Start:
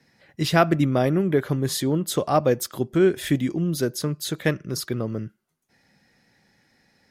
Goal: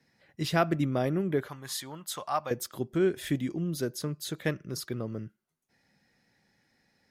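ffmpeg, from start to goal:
ffmpeg -i in.wav -filter_complex "[0:a]asettb=1/sr,asplit=3[link_01][link_02][link_03];[link_01]atrim=end=1.484[link_04];[link_02]atrim=start=1.48:end=2.51,asetpts=PTS-STARTPTS,afade=type=in:duration=0.004:curve=qsin,afade=type=out:start_time=1.026:duration=0.004:curve=qsin,lowshelf=frequency=610:width_type=q:width=1.5:gain=-13[link_05];[link_03]atrim=start=2.506[link_06];[link_04][link_05]acrossfade=duration=0.004:curve1=hsin:curve2=qsin[link_07];[link_07][link_06]acrossfade=duration=0.004:curve1=qsin:curve2=hsin,volume=-7.5dB" out.wav

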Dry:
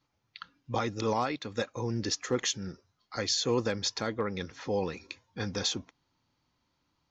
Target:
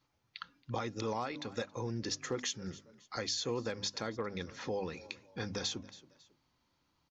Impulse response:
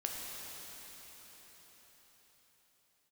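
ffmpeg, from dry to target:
-filter_complex "[0:a]bandreject=frequency=50:width_type=h:width=6,bandreject=frequency=100:width_type=h:width=6,bandreject=frequency=150:width_type=h:width=6,bandreject=frequency=200:width_type=h:width=6,bandreject=frequency=250:width_type=h:width=6,bandreject=frequency=300:width_type=h:width=6,asplit=3[link_01][link_02][link_03];[link_02]adelay=274,afreqshift=33,volume=-24dB[link_04];[link_03]adelay=548,afreqshift=66,volume=-33.6dB[link_05];[link_01][link_04][link_05]amix=inputs=3:normalize=0,acompressor=threshold=-38dB:ratio=2"

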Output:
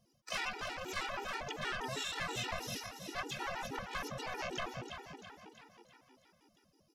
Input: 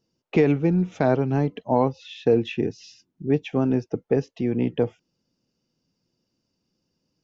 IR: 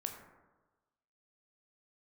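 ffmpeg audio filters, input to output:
-filter_complex "[0:a]acrossover=split=490[link_01][link_02];[link_02]acompressor=threshold=-23dB:ratio=5[link_03];[link_01][link_03]amix=inputs=2:normalize=0,asplit=2[link_04][link_05];[link_05]aecho=0:1:181:0.126[link_06];[link_04][link_06]amix=inputs=2:normalize=0,asoftclip=type=tanh:threshold=-22dB,afftfilt=real='re*lt(hypot(re,im),0.0631)':imag='im*lt(hypot(re,im),0.0631)':win_size=1024:overlap=0.75,asetrate=45938,aresample=44100,asplit=2[link_07][link_08];[link_08]asplit=6[link_09][link_10][link_11][link_12][link_13][link_14];[link_09]adelay=331,afreqshift=33,volume=-8dB[link_15];[link_10]adelay=662,afreqshift=66,volume=-13.4dB[link_16];[link_11]adelay=993,afreqshift=99,volume=-18.7dB[link_17];[link_12]adelay=1324,afreqshift=132,volume=-24.1dB[link_18];[link_13]adelay=1655,afreqshift=165,volume=-29.4dB[link_19];[link_14]adelay=1986,afreqshift=198,volume=-34.8dB[link_20];[link_15][link_16][link_17][link_18][link_19][link_20]amix=inputs=6:normalize=0[link_21];[link_07][link_21]amix=inputs=2:normalize=0,asplit=4[link_22][link_23][link_24][link_25];[link_23]asetrate=22050,aresample=44100,atempo=2,volume=-17dB[link_26];[link_24]asetrate=35002,aresample=44100,atempo=1.25992,volume=-15dB[link_27];[link_25]asetrate=88200,aresample=44100,atempo=0.5,volume=-6dB[link_28];[link_22][link_26][link_27][link_28]amix=inputs=4:normalize=0,afftfilt=real='re*gt(sin(2*PI*6.3*pts/sr)*(1-2*mod(floor(b*sr/1024/250),2)),0)':imag='im*gt(sin(2*PI*6.3*pts/sr)*(1-2*mod(floor(b*sr/1024/250),2)),0)':win_size=1024:overlap=0.75,volume=4dB"

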